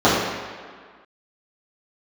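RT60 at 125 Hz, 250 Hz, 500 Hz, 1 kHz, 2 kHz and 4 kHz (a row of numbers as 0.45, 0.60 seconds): 1.3, 1.7, 1.7, 1.8, 1.8, 1.4 seconds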